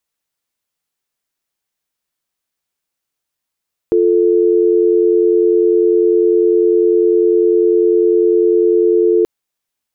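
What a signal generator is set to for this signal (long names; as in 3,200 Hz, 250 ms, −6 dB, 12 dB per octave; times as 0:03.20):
call progress tone dial tone, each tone −11.5 dBFS 5.33 s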